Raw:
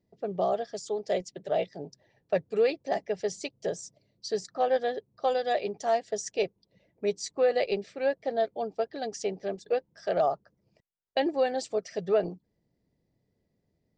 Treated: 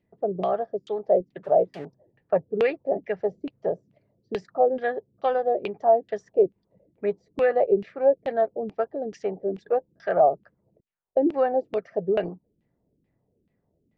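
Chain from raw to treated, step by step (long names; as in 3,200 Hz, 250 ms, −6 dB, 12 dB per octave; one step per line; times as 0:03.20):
0:01.43–0:01.85: spike at every zero crossing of −31.5 dBFS
auto-filter low-pass saw down 2.3 Hz 240–2,900 Hz
level +2 dB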